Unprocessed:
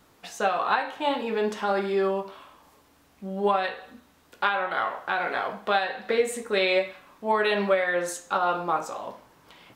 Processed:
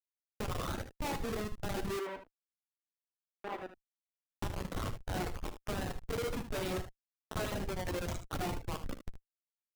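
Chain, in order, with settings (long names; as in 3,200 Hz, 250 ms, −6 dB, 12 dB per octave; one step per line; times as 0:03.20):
rippled gain that drifts along the octave scale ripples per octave 0.83, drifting +1.2 Hz, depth 12 dB
high-shelf EQ 2,100 Hz +3.5 dB
tuned comb filter 120 Hz, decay 0.77 s, harmonics all, mix 60%
brickwall limiter −24 dBFS, peak gain reduction 11 dB
four-comb reverb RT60 0.45 s, combs from 28 ms, DRR 16.5 dB
comparator with hysteresis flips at −29 dBFS
reverb reduction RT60 1.1 s
0:01.99–0:03.70: three-way crossover with the lows and the highs turned down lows −24 dB, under 290 Hz, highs −21 dB, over 2,800 Hz
ambience of single reflections 11 ms −11.5 dB, 59 ms −16 dB, 76 ms −11 dB
level +1 dB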